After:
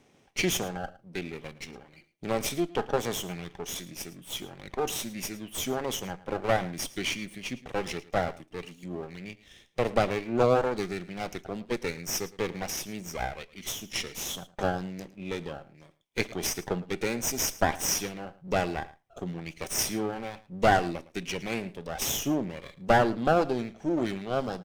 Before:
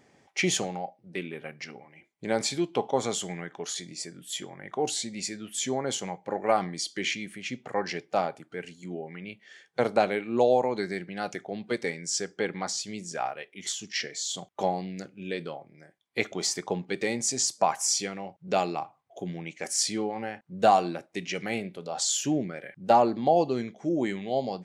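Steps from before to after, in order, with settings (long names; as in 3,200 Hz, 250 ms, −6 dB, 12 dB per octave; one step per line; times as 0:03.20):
lower of the sound and its delayed copy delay 0.35 ms
on a send: single-tap delay 110 ms −19 dB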